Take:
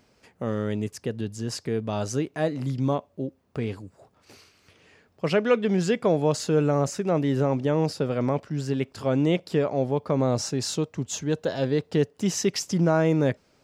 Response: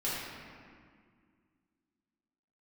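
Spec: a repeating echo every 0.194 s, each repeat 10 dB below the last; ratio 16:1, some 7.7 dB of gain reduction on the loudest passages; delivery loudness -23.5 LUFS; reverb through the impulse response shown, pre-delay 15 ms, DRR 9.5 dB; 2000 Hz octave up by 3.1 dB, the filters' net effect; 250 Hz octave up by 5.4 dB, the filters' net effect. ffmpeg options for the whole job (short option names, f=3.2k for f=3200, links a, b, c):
-filter_complex "[0:a]equalizer=f=250:t=o:g=7,equalizer=f=2k:t=o:g=4,acompressor=threshold=-21dB:ratio=16,aecho=1:1:194|388|582|776:0.316|0.101|0.0324|0.0104,asplit=2[a][b];[1:a]atrim=start_sample=2205,adelay=15[c];[b][c]afir=irnorm=-1:irlink=0,volume=-16dB[d];[a][d]amix=inputs=2:normalize=0,volume=3.5dB"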